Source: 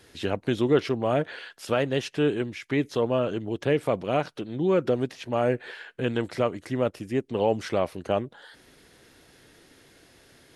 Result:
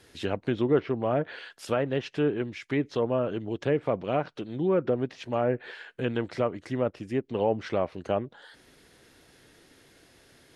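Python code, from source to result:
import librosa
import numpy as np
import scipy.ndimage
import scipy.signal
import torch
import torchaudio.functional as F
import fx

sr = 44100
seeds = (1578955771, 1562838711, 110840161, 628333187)

y = fx.env_lowpass_down(x, sr, base_hz=1800.0, full_db=-19.5)
y = F.gain(torch.from_numpy(y), -2.0).numpy()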